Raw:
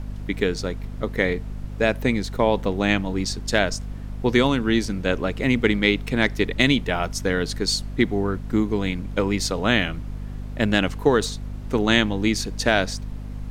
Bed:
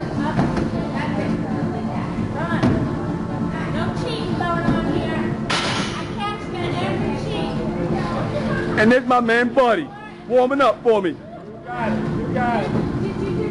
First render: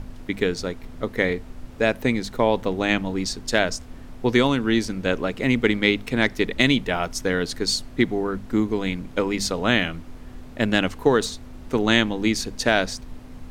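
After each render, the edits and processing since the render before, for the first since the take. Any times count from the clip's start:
mains-hum notches 50/100/150/200 Hz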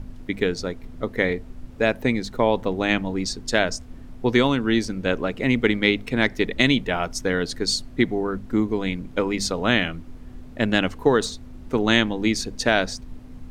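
broadband denoise 6 dB, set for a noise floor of −41 dBFS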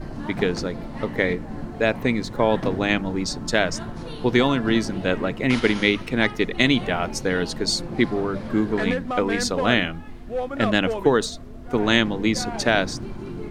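mix in bed −11.5 dB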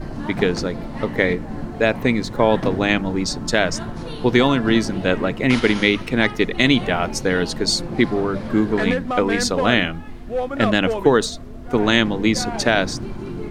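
level +3.5 dB
brickwall limiter −2 dBFS, peak gain reduction 2.5 dB

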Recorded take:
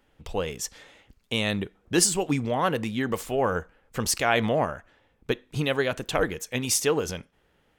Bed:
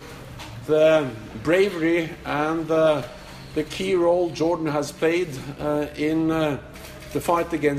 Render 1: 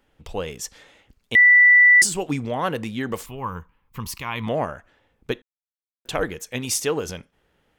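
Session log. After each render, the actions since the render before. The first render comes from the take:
0:01.35–0:02.02: beep over 1,970 Hz −9 dBFS
0:03.26–0:04.47: drawn EQ curve 160 Hz 0 dB, 700 Hz −18 dB, 1,000 Hz +5 dB, 1,500 Hz −12 dB, 2,300 Hz −3 dB, 8,400 Hz −12 dB, 15,000 Hz +4 dB
0:05.42–0:06.05: silence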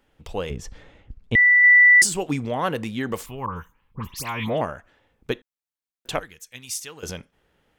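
0:00.50–0:01.64: RIAA equalisation playback
0:03.46–0:04.61: all-pass dispersion highs, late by 106 ms, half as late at 2,400 Hz
0:06.19–0:07.03: guitar amp tone stack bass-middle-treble 5-5-5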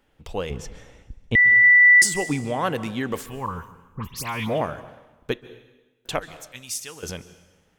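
dense smooth reverb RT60 1.1 s, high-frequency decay 1×, pre-delay 120 ms, DRR 15.5 dB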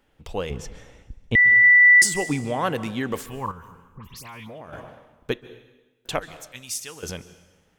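0:03.51–0:04.73: downward compressor 5 to 1, threshold −38 dBFS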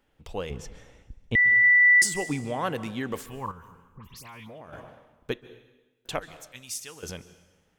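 level −4.5 dB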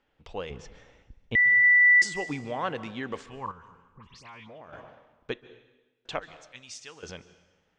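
Bessel low-pass filter 4,400 Hz, order 8
low-shelf EQ 360 Hz −6.5 dB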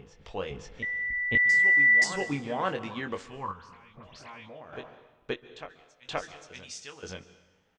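double-tracking delay 21 ms −6.5 dB
on a send: backwards echo 526 ms −10 dB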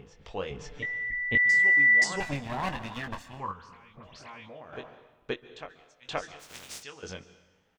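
0:00.60–0:01.32: comb filter 6.8 ms, depth 91%
0:02.20–0:03.40: lower of the sound and its delayed copy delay 1.1 ms
0:06.39–0:06.82: compressing power law on the bin magnitudes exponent 0.29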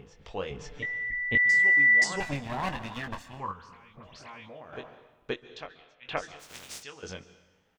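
0:05.33–0:06.15: low-pass with resonance 7,900 Hz → 2,300 Hz, resonance Q 2

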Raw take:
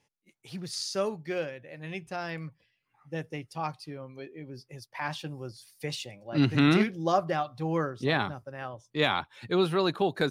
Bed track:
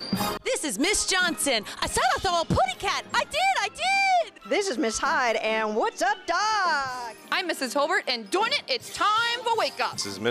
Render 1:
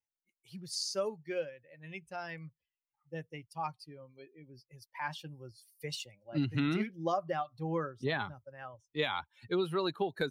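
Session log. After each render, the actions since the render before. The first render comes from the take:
spectral dynamics exaggerated over time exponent 1.5
downward compressor 6 to 1, threshold −28 dBFS, peak gain reduction 9 dB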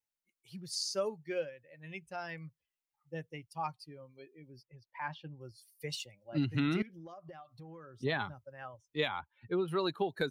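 0:04.63–0:05.41: high-frequency loss of the air 280 metres
0:06.82–0:07.94: downward compressor 10 to 1, threshold −46 dBFS
0:09.08–0:09.68: high-frequency loss of the air 470 metres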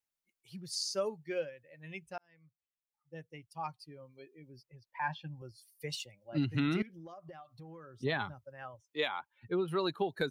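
0:02.18–0:04.09: fade in
0:04.99–0:05.42: comb filter 1.2 ms, depth 78%
0:08.82–0:09.31: high-pass filter 300 Hz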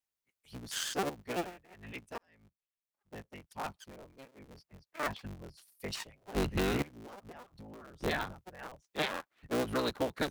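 sub-harmonics by changed cycles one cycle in 3, inverted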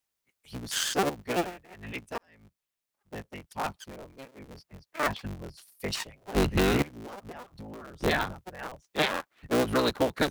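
level +7 dB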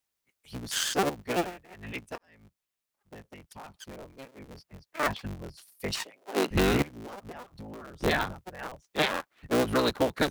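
0:02.15–0:03.74: downward compressor, threshold −42 dBFS
0:06.05–0:06.51: high-pass filter 260 Hz 24 dB per octave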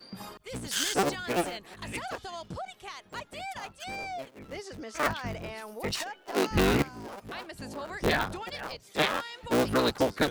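mix in bed track −16 dB

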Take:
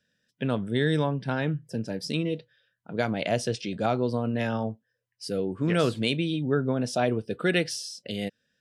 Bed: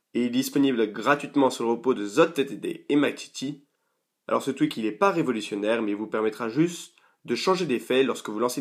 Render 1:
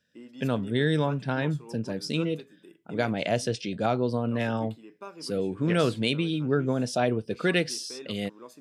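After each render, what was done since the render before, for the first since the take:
mix in bed −21.5 dB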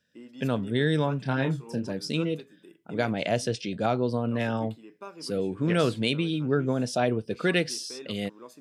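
0:01.22–0:01.87: double-tracking delay 30 ms −6 dB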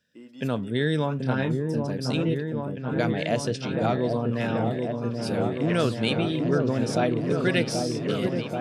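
echo whose low-pass opens from repeat to repeat 782 ms, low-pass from 750 Hz, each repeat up 1 octave, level −3 dB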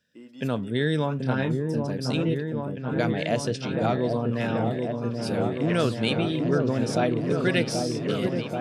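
no processing that can be heard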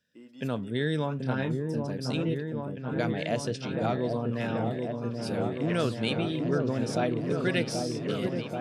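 level −4 dB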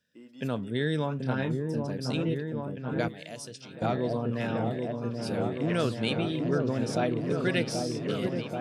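0:03.08–0:03.82: first-order pre-emphasis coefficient 0.8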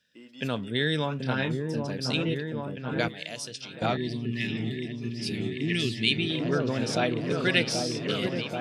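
0:03.97–0:06.30: gain on a spectral selection 440–1,700 Hz −21 dB
parametric band 3,300 Hz +9.5 dB 2.2 octaves

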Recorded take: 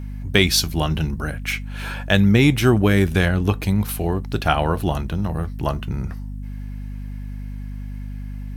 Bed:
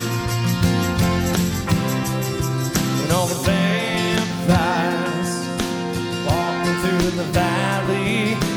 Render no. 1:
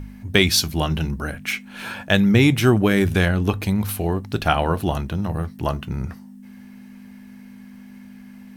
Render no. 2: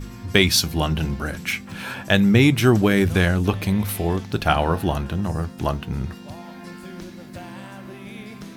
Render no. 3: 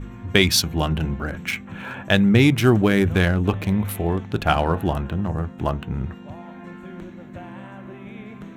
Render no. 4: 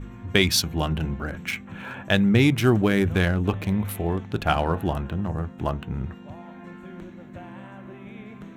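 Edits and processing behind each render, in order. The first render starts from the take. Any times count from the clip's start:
hum removal 50 Hz, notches 3
mix in bed −19.5 dB
adaptive Wiener filter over 9 samples
level −3 dB

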